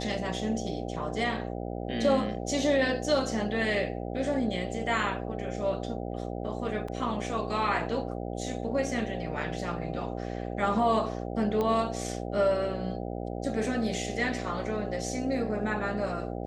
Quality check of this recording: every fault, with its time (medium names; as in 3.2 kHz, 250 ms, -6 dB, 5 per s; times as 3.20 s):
buzz 60 Hz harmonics 13 -35 dBFS
6.88 s: dropout 4 ms
11.61 s: pop -18 dBFS